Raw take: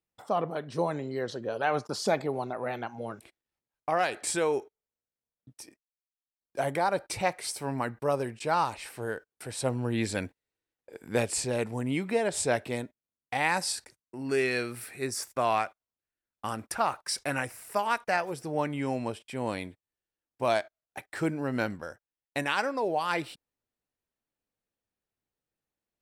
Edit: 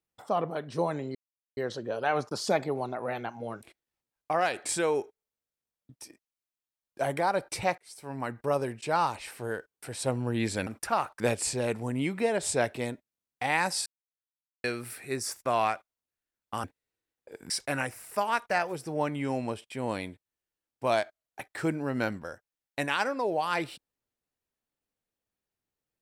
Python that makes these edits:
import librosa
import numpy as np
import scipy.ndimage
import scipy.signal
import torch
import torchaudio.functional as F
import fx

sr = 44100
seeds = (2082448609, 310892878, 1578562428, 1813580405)

y = fx.edit(x, sr, fx.insert_silence(at_s=1.15, length_s=0.42),
    fx.fade_in_span(start_s=7.36, length_s=0.64),
    fx.swap(start_s=10.25, length_s=0.86, other_s=16.55, other_length_s=0.53),
    fx.silence(start_s=13.77, length_s=0.78), tone=tone)